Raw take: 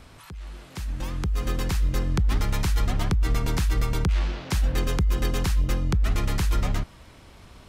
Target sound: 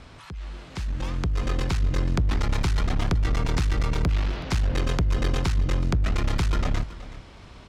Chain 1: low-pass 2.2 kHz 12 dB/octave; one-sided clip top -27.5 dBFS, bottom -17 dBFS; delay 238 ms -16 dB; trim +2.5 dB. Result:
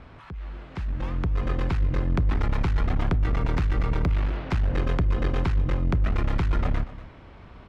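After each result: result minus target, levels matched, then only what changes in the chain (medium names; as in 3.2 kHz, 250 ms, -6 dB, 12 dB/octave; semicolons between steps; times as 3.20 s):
8 kHz band -15.0 dB; echo 136 ms early
change: low-pass 6.2 kHz 12 dB/octave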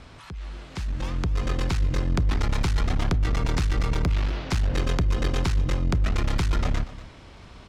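echo 136 ms early
change: delay 374 ms -16 dB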